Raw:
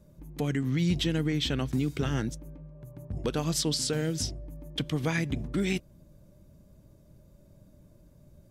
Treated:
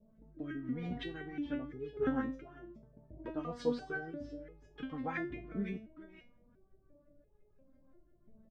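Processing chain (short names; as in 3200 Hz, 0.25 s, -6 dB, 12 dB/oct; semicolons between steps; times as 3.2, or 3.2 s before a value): on a send: echo 0.424 s -13 dB; on the sum: LFO low-pass saw up 5.8 Hz 500–2000 Hz; rotary speaker horn 0.75 Hz; stepped resonator 2.9 Hz 220–420 Hz; gain +9 dB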